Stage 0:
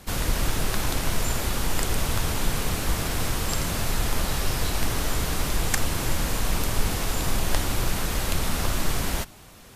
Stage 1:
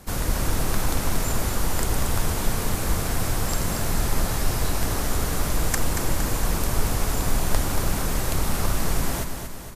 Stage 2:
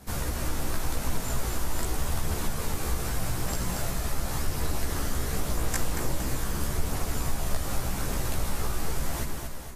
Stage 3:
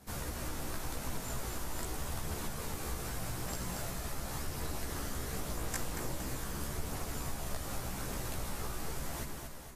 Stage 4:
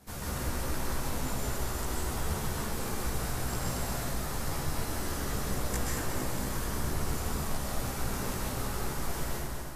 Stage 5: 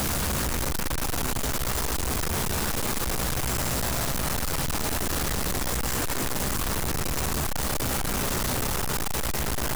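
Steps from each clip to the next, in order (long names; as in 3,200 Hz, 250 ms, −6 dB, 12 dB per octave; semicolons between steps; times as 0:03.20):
parametric band 3,100 Hz −6 dB 1.4 octaves; on a send: repeating echo 231 ms, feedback 54%, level −7 dB; on the sum: level +1 dB
downward compressor 2 to 1, threshold −23 dBFS, peak gain reduction 6 dB; multi-voice chorus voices 2, 0.43 Hz, delay 15 ms, depth 1.8 ms
low-shelf EQ 63 Hz −6.5 dB; level −7 dB
convolution reverb RT60 1.2 s, pre-delay 118 ms, DRR −4 dB
sign of each sample alone; level +5 dB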